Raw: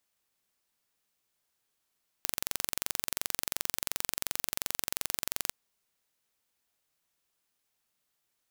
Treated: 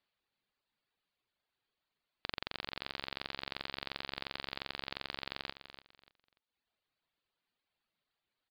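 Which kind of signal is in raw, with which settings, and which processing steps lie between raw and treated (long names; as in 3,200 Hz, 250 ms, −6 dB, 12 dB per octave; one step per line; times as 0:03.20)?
impulse train 22.8 per second, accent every 0, −3 dBFS 3.26 s
reverb reduction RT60 1.3 s
Butterworth low-pass 4,700 Hz 96 dB per octave
on a send: repeating echo 292 ms, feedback 25%, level −11.5 dB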